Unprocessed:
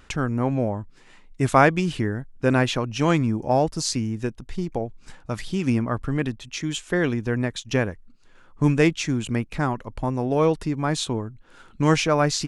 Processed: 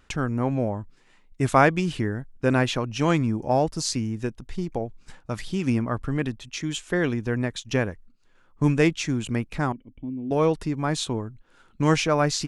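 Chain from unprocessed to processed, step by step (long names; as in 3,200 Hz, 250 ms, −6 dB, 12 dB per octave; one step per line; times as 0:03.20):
noise gate −43 dBFS, range −6 dB
0:09.72–0:10.31: formant resonators in series i
level −1.5 dB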